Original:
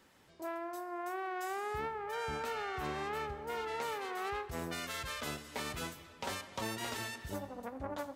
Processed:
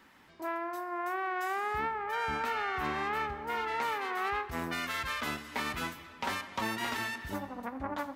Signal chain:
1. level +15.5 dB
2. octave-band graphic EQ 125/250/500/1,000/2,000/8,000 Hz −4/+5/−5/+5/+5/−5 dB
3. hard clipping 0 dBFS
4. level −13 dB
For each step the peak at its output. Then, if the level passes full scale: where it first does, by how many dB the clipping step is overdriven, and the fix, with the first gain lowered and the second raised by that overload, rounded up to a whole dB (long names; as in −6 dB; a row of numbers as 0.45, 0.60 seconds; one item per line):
−8.0, −6.0, −6.0, −19.0 dBFS
no step passes full scale